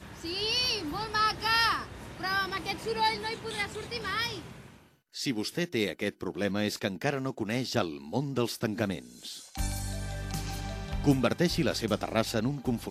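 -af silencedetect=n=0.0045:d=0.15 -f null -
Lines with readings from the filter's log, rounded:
silence_start: 4.78
silence_end: 5.14 | silence_duration: 0.36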